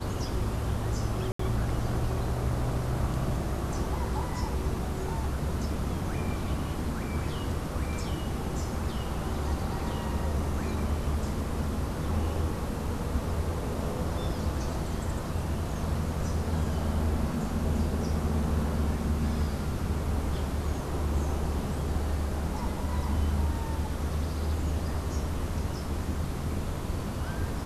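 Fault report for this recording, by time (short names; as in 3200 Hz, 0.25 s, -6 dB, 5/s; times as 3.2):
1.32–1.39 gap 74 ms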